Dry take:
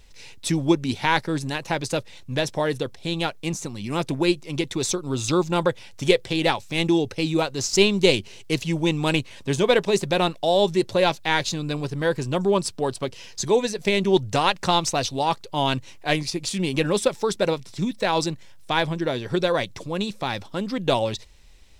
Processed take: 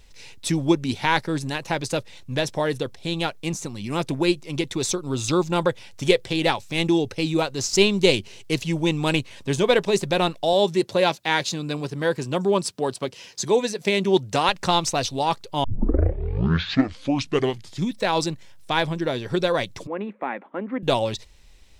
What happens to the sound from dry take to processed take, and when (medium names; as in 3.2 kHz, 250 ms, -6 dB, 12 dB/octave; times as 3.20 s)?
10.53–14.49 s: high-pass 130 Hz
15.64 s: tape start 2.27 s
19.87–20.83 s: elliptic band-pass 230–2100 Hz